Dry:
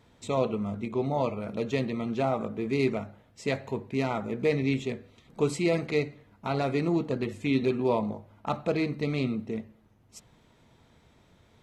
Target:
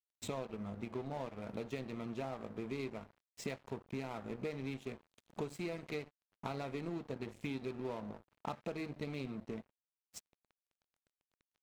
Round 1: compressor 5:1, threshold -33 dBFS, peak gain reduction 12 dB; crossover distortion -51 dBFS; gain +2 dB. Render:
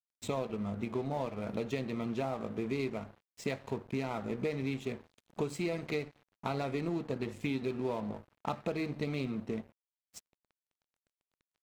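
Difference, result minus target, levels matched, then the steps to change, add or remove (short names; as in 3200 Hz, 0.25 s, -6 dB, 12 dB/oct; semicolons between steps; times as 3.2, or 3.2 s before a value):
compressor: peak gain reduction -5.5 dB
change: compressor 5:1, threshold -40 dBFS, peak gain reduction 17.5 dB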